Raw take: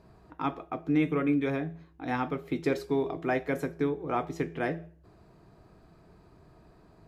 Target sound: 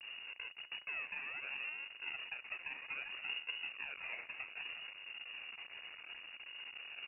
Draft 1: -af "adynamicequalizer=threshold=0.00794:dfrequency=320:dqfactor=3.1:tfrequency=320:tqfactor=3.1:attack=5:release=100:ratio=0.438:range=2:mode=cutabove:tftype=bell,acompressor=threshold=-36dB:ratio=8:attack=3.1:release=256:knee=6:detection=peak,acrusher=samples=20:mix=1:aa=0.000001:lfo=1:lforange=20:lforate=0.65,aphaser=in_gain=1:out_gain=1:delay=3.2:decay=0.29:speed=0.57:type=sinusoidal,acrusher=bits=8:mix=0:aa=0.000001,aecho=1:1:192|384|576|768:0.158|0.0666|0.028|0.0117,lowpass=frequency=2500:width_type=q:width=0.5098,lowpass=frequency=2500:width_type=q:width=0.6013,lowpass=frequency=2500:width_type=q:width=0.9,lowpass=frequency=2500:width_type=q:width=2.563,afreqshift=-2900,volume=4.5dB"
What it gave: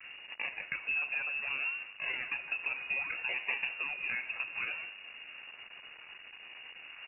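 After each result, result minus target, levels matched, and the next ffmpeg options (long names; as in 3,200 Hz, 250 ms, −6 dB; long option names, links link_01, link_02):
downward compressor: peak gain reduction −9 dB; sample-and-hold swept by an LFO: distortion −9 dB
-af "adynamicequalizer=threshold=0.00794:dfrequency=320:dqfactor=3.1:tfrequency=320:tqfactor=3.1:attack=5:release=100:ratio=0.438:range=2:mode=cutabove:tftype=bell,acompressor=threshold=-46.5dB:ratio=8:attack=3.1:release=256:knee=6:detection=peak,acrusher=samples=20:mix=1:aa=0.000001:lfo=1:lforange=20:lforate=0.65,aphaser=in_gain=1:out_gain=1:delay=3.2:decay=0.29:speed=0.57:type=sinusoidal,acrusher=bits=8:mix=0:aa=0.000001,aecho=1:1:192|384|576|768:0.158|0.0666|0.028|0.0117,lowpass=frequency=2500:width_type=q:width=0.5098,lowpass=frequency=2500:width_type=q:width=0.6013,lowpass=frequency=2500:width_type=q:width=0.9,lowpass=frequency=2500:width_type=q:width=2.563,afreqshift=-2900,volume=4.5dB"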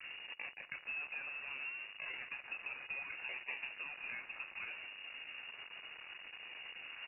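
sample-and-hold swept by an LFO: distortion −9 dB
-af "adynamicequalizer=threshold=0.00794:dfrequency=320:dqfactor=3.1:tfrequency=320:tqfactor=3.1:attack=5:release=100:ratio=0.438:range=2:mode=cutabove:tftype=bell,acompressor=threshold=-46.5dB:ratio=8:attack=3.1:release=256:knee=6:detection=peak,acrusher=samples=55:mix=1:aa=0.000001:lfo=1:lforange=55:lforate=0.65,aphaser=in_gain=1:out_gain=1:delay=3.2:decay=0.29:speed=0.57:type=sinusoidal,acrusher=bits=8:mix=0:aa=0.000001,aecho=1:1:192|384|576|768:0.158|0.0666|0.028|0.0117,lowpass=frequency=2500:width_type=q:width=0.5098,lowpass=frequency=2500:width_type=q:width=0.6013,lowpass=frequency=2500:width_type=q:width=0.9,lowpass=frequency=2500:width_type=q:width=2.563,afreqshift=-2900,volume=4.5dB"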